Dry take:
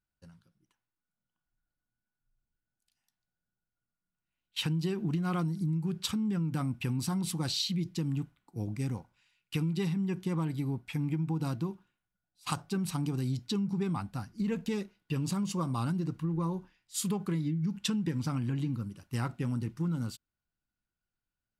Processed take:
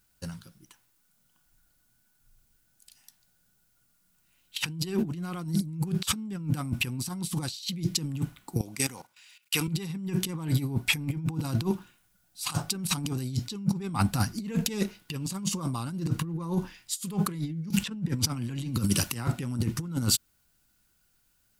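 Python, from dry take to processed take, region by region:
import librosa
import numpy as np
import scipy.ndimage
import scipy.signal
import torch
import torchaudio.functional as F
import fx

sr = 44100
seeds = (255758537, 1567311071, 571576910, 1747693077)

y = fx.chain(x, sr, fx.highpass(hz=970.0, slope=6),
    fx.level_steps(step_db=15), at=(8.61, 9.68))
y = fx.chain(y, sr, fx.high_shelf(hz=2600.0, db=-3.0),
    fx.band_squash(depth_pct=100), at=(17.7, 19.28))
y = fx.high_shelf(y, sr, hz=4400.0, db=11.0)
y = fx.over_compress(y, sr, threshold_db=-37.0, ratio=-0.5)
y = y * 10.0 ** (9.0 / 20.0)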